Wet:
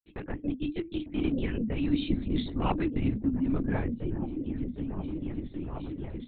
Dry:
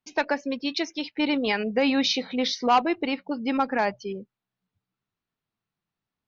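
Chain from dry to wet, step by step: Doppler pass-by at 2.3, 14 m/s, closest 8 m; gate -57 dBFS, range -11 dB; resonant low shelf 410 Hz +10 dB, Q 1.5; notches 60/120/180/240/300/360/420/480/540 Hz; reverse; compressor 10:1, threshold -24 dBFS, peak gain reduction 13.5 dB; reverse; rotary speaker horn 6 Hz, later 0.9 Hz, at 0.72; on a send: repeats that get brighter 0.767 s, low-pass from 200 Hz, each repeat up 1 oct, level -3 dB; on the sum: LPC vocoder at 8 kHz whisper

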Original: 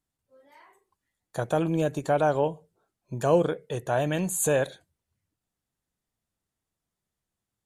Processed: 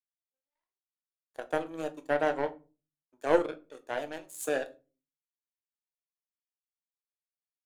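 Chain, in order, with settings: elliptic high-pass 260 Hz; notch 2800 Hz, Q 17; power-law curve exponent 2; shoebox room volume 150 m³, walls furnished, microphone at 0.56 m

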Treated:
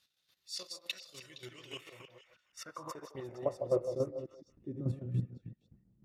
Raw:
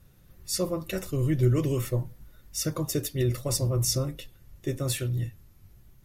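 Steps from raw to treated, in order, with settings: reverse delay 0.158 s, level -5 dB; transient shaper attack -6 dB, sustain -10 dB; chopper 3.5 Hz, depth 65%, duty 20%; band-pass sweep 4000 Hz -> 210 Hz, 1.34–4.87; delay with a stepping band-pass 0.155 s, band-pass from 660 Hz, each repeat 1.4 oct, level -6.5 dB; gain +7 dB

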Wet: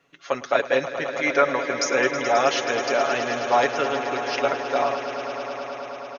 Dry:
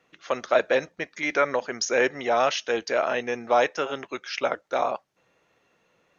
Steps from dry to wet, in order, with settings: comb 7.2 ms; swelling echo 0.107 s, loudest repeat 5, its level -13 dB

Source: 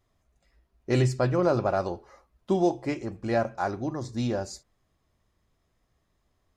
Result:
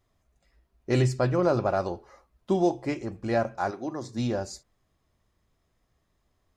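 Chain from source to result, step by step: 3.7–4.17 HPF 390 Hz -> 120 Hz 12 dB/oct

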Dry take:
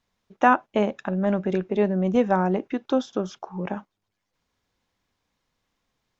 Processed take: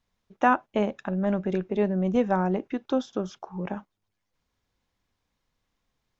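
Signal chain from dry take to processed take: low shelf 96 Hz +7.5 dB; gain -3.5 dB

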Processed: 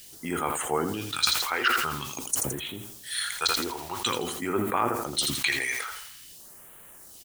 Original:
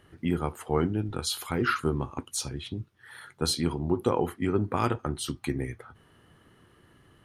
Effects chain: gate -55 dBFS, range -7 dB; weighting filter ITU-R 468; treble ducked by the level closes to 420 Hz, closed at -21 dBFS; high shelf 3800 Hz +11.5 dB; in parallel at 0 dB: limiter -20.5 dBFS, peak gain reduction 7.5 dB; on the sum: requantised 8-bit, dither triangular; phaser stages 2, 0.48 Hz, lowest notch 160–4800 Hz; on a send: feedback echo 83 ms, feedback 42%, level -12 dB; on the sum: sustainer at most 43 dB/s

